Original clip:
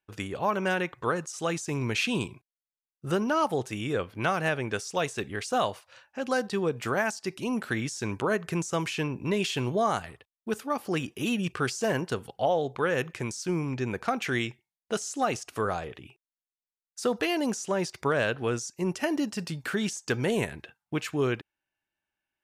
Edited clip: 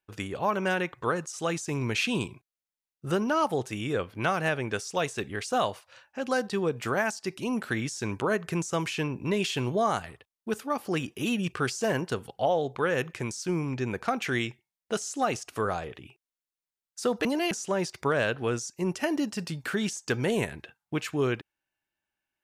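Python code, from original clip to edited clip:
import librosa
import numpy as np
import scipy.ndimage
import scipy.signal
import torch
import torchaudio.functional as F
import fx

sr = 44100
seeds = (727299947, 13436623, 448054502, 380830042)

y = fx.edit(x, sr, fx.reverse_span(start_s=17.25, length_s=0.26), tone=tone)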